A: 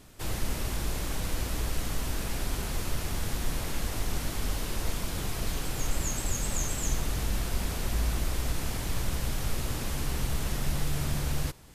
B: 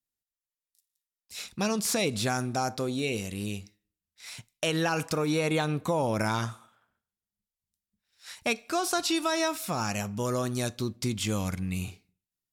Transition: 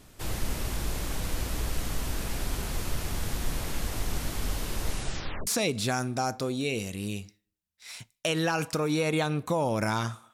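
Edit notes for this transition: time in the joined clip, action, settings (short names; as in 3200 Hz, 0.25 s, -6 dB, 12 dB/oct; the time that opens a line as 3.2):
A
4.86 tape stop 0.61 s
5.47 switch to B from 1.85 s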